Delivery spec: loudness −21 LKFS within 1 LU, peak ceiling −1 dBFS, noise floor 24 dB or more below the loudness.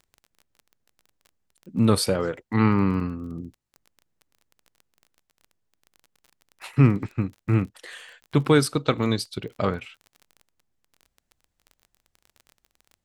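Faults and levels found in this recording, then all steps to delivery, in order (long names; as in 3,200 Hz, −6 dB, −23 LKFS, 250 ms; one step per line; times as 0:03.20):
crackle rate 23 per second; integrated loudness −24.0 LKFS; sample peak −5.0 dBFS; target loudness −21.0 LKFS
→ click removal
level +3 dB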